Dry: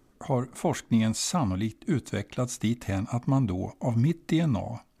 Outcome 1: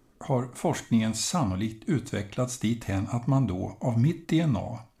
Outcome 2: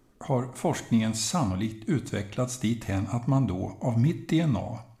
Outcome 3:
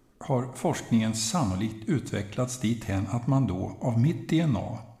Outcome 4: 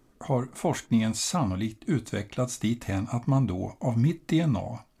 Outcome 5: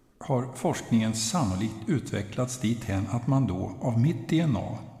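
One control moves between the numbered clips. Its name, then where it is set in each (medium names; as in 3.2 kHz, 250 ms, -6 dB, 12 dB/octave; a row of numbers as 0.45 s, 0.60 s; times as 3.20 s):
gated-style reverb, gate: 150 ms, 230 ms, 350 ms, 80 ms, 530 ms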